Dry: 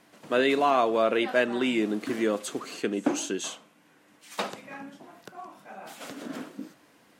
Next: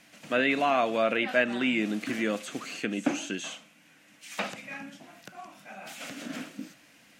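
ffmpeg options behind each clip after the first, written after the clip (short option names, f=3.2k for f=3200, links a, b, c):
-filter_complex "[0:a]acrossover=split=2500[a][b];[b]acompressor=threshold=-46dB:ratio=4:attack=1:release=60[c];[a][c]amix=inputs=2:normalize=0,equalizer=f=100:t=o:w=0.67:g=-3,equalizer=f=400:t=o:w=0.67:g=-11,equalizer=f=1k:t=o:w=0.67:g=-8,equalizer=f=2.5k:t=o:w=0.67:g=6,equalizer=f=6.3k:t=o:w=0.67:g=4,volume=2.5dB"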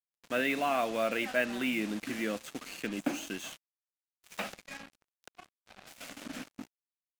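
-af "acrusher=bits=5:mix=0:aa=0.5,volume=-5dB"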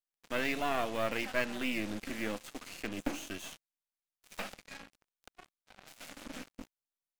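-af "aeval=exprs='if(lt(val(0),0),0.251*val(0),val(0))':c=same"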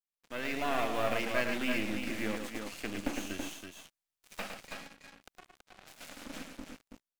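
-filter_complex "[0:a]dynaudnorm=f=140:g=7:m=8dB,asplit=2[a][b];[b]aecho=0:1:109|328:0.501|0.501[c];[a][c]amix=inputs=2:normalize=0,volume=-8dB"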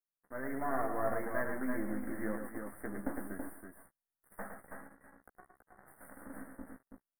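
-filter_complex "[0:a]asuperstop=centerf=4300:order=20:qfactor=0.62,asplit=2[a][b];[b]adelay=15,volume=-5.5dB[c];[a][c]amix=inputs=2:normalize=0,volume=-3.5dB"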